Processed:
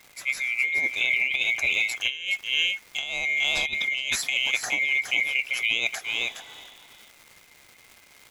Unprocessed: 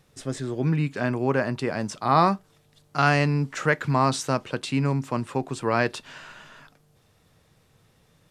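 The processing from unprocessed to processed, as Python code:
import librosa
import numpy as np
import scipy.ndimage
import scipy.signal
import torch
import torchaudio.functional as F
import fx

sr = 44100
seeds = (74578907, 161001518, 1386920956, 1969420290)

y = fx.band_swap(x, sr, width_hz=2000)
y = fx.low_shelf(y, sr, hz=200.0, db=-7.0)
y = fx.dmg_crackle(y, sr, seeds[0], per_s=400.0, level_db=-41.0)
y = y + 10.0 ** (-8.0 / 20.0) * np.pad(y, (int(417 * sr / 1000.0), 0))[:len(y)]
y = fx.over_compress(y, sr, threshold_db=-24.0, ratio=-0.5)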